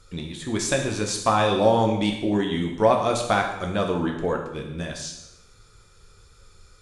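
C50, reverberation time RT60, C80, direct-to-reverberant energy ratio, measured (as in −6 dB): 6.0 dB, 0.90 s, 8.5 dB, 1.5 dB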